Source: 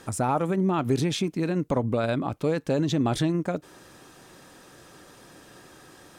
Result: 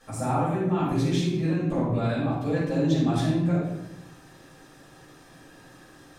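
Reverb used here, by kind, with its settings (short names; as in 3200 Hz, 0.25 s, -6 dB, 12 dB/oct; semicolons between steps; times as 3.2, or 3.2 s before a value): shoebox room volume 290 m³, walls mixed, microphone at 6.1 m; gain -16 dB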